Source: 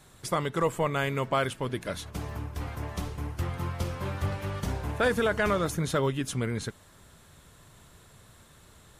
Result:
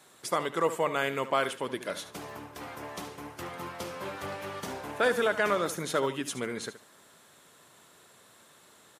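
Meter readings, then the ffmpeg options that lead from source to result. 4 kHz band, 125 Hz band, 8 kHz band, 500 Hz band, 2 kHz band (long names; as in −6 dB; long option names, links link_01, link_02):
0.0 dB, −14.0 dB, 0.0 dB, −0.5 dB, +0.5 dB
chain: -filter_complex "[0:a]highpass=290,asplit=2[link_01][link_02];[link_02]aecho=0:1:73|146|219:0.224|0.056|0.014[link_03];[link_01][link_03]amix=inputs=2:normalize=0"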